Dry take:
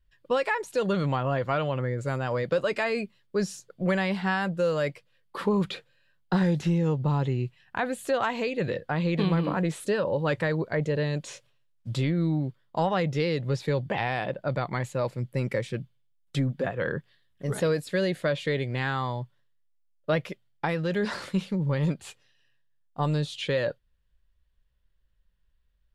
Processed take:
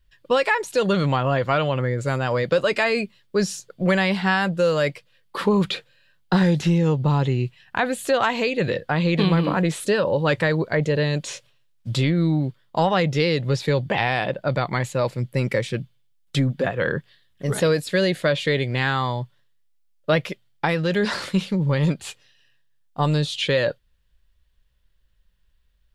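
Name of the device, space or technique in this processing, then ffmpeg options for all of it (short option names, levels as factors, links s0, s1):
presence and air boost: -af "equalizer=f=3800:t=o:w=1.9:g=4,highshelf=f=10000:g=3.5,volume=1.88"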